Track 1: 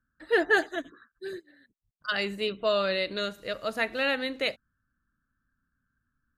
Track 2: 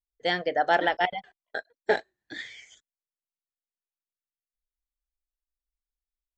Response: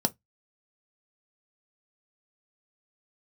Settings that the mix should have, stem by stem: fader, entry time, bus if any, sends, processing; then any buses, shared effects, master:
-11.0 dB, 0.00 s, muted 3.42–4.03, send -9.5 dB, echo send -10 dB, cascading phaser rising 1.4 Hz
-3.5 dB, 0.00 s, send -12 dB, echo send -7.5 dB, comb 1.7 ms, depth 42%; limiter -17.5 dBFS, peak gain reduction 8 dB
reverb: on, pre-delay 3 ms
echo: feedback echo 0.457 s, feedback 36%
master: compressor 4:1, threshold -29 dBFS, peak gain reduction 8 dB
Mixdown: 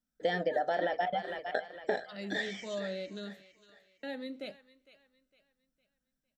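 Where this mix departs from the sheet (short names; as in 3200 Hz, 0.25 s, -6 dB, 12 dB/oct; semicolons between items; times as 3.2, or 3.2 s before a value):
stem 1 -11.0 dB -> -21.5 dB; reverb return +7.5 dB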